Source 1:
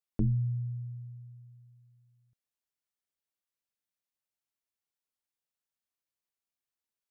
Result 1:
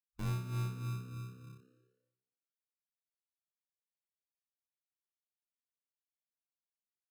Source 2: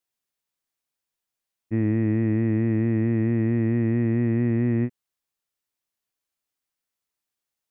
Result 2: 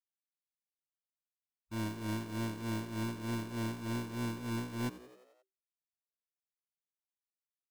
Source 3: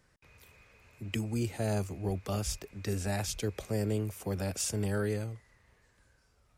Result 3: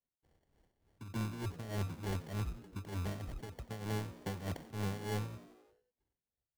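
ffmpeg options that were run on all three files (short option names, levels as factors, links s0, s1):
-filter_complex "[0:a]agate=range=0.0224:threshold=0.00141:ratio=3:detection=peak,afwtdn=0.0251,highshelf=f=5800:t=q:w=1.5:g=-13.5,areverse,acompressor=threshold=0.0251:ratio=12,areverse,acrusher=samples=35:mix=1:aa=0.000001,asoftclip=type=tanh:threshold=0.015,tremolo=f=3.3:d=0.74,asplit=7[s0][s1][s2][s3][s4][s5][s6];[s1]adelay=88,afreqshift=64,volume=0.15[s7];[s2]adelay=176,afreqshift=128,volume=0.0923[s8];[s3]adelay=264,afreqshift=192,volume=0.0575[s9];[s4]adelay=352,afreqshift=256,volume=0.0355[s10];[s5]adelay=440,afreqshift=320,volume=0.0221[s11];[s6]adelay=528,afreqshift=384,volume=0.0136[s12];[s0][s7][s8][s9][s10][s11][s12]amix=inputs=7:normalize=0,volume=1.88"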